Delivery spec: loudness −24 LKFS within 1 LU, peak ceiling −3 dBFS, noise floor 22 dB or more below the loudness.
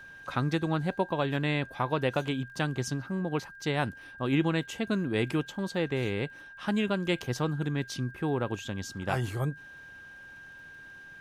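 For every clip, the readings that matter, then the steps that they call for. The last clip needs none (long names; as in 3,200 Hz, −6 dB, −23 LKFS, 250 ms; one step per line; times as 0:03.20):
crackle rate 41 per second; interfering tone 1,600 Hz; level of the tone −46 dBFS; integrated loudness −31.0 LKFS; sample peak −15.5 dBFS; target loudness −24.0 LKFS
→ click removal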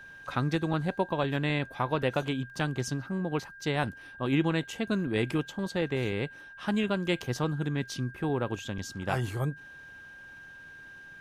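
crackle rate 0.089 per second; interfering tone 1,600 Hz; level of the tone −46 dBFS
→ notch filter 1,600 Hz, Q 30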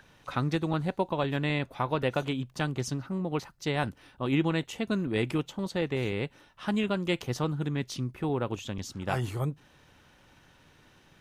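interfering tone none found; integrated loudness −31.0 LKFS; sample peak −15.5 dBFS; target loudness −24.0 LKFS
→ level +7 dB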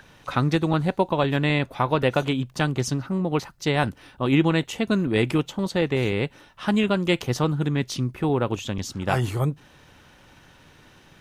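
integrated loudness −24.0 LKFS; sample peak −8.5 dBFS; background noise floor −54 dBFS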